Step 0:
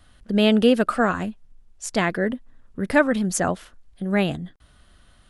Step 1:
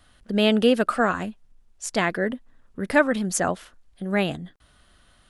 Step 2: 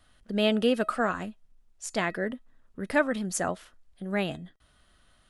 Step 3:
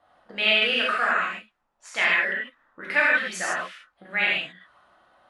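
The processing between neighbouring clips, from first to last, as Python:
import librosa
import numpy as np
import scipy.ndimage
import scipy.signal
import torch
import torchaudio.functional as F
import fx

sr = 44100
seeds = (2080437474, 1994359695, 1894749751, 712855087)

y1 = fx.low_shelf(x, sr, hz=240.0, db=-5.5)
y2 = fx.comb_fb(y1, sr, f0_hz=640.0, decay_s=0.21, harmonics='all', damping=0.0, mix_pct=50)
y3 = fx.auto_wah(y2, sr, base_hz=740.0, top_hz=2300.0, q=2.2, full_db=-32.0, direction='up')
y3 = fx.rev_gated(y3, sr, seeds[0], gate_ms=180, shape='flat', drr_db=-6.5)
y3 = F.gain(torch.from_numpy(y3), 9.0).numpy()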